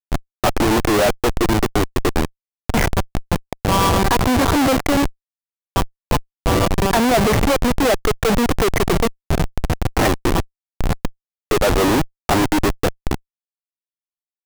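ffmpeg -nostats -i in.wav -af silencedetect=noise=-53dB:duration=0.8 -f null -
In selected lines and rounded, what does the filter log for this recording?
silence_start: 13.20
silence_end: 14.45 | silence_duration: 1.26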